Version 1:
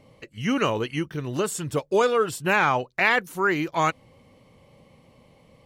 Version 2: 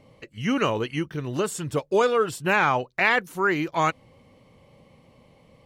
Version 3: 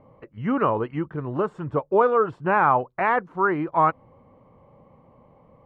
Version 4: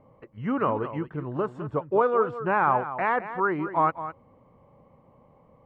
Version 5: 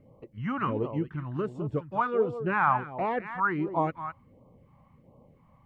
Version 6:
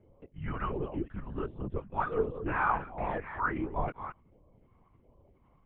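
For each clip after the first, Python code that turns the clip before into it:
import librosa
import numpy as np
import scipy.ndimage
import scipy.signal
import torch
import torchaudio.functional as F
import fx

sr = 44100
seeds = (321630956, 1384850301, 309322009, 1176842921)

y1 = fx.high_shelf(x, sr, hz=7000.0, db=-4.0)
y2 = fx.lowpass_res(y1, sr, hz=1100.0, q=1.8)
y3 = y2 + 10.0 ** (-12.0 / 20.0) * np.pad(y2, (int(210 * sr / 1000.0), 0))[:len(y2)]
y3 = F.gain(torch.from_numpy(y3), -3.5).numpy()
y4 = fx.phaser_stages(y3, sr, stages=2, low_hz=400.0, high_hz=1700.0, hz=1.4, feedback_pct=5)
y4 = F.gain(torch.from_numpy(y4), 2.0).numpy()
y5 = fx.lpc_vocoder(y4, sr, seeds[0], excitation='whisper', order=10)
y5 = F.gain(torch.from_numpy(y5), -4.5).numpy()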